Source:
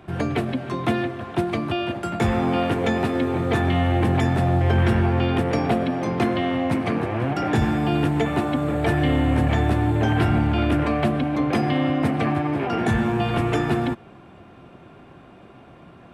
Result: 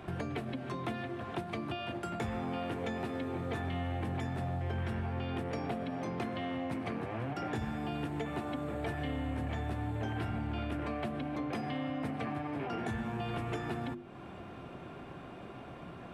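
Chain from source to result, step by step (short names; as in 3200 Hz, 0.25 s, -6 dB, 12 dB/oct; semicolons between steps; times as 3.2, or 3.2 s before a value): notches 50/100/150/200/250/300/350 Hz; compressor 3:1, threshold -39 dBFS, peak gain reduction 17 dB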